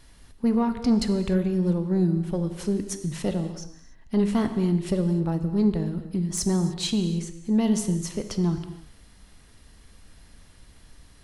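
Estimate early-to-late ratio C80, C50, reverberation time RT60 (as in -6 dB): 10.5 dB, 9.5 dB, no single decay rate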